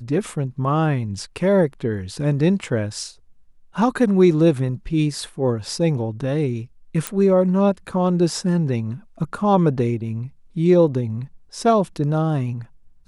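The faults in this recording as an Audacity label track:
7.070000	7.070000	click −7 dBFS

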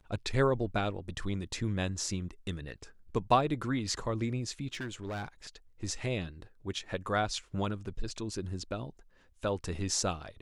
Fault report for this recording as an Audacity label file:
4.730000	5.280000	clipping −33.5 dBFS

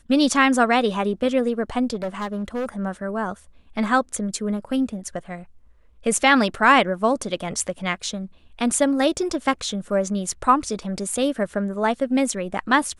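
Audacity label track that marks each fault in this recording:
1.940000	2.690000	clipping −22.5 dBFS

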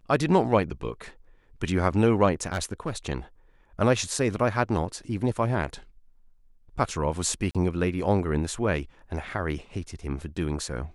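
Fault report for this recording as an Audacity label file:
2.460000	2.910000	clipping −22 dBFS
7.510000	7.550000	drop-out 37 ms

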